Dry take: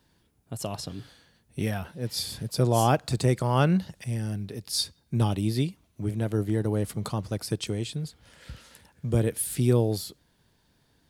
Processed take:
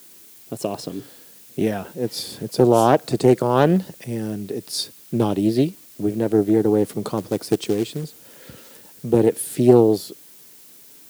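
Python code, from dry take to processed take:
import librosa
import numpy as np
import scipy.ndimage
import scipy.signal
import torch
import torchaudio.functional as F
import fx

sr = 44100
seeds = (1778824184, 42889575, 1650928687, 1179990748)

y = scipy.signal.sosfilt(scipy.signal.butter(2, 150.0, 'highpass', fs=sr, output='sos'), x)
y = fx.peak_eq(y, sr, hz=380.0, db=12.0, octaves=1.7)
y = fx.dmg_noise_colour(y, sr, seeds[0], colour='blue', level_db=-48.0)
y = fx.quant_float(y, sr, bits=2, at=(7.17, 8.04))
y = fx.doppler_dist(y, sr, depth_ms=0.25)
y = y * 10.0 ** (1.5 / 20.0)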